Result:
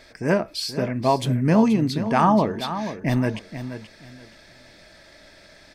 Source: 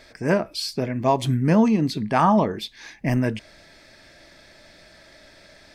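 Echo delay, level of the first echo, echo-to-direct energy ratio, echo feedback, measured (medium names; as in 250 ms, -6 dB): 479 ms, -11.0 dB, -11.0 dB, 23%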